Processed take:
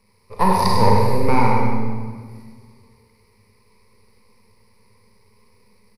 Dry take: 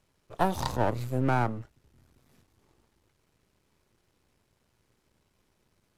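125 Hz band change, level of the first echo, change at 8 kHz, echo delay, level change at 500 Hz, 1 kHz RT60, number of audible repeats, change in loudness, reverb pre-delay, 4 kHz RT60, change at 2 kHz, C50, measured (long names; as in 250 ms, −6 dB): +10.0 dB, −6.5 dB, +10.5 dB, 99 ms, +11.0 dB, 1.5 s, 1, +10.0 dB, 31 ms, 1.4 s, +8.5 dB, −1.5 dB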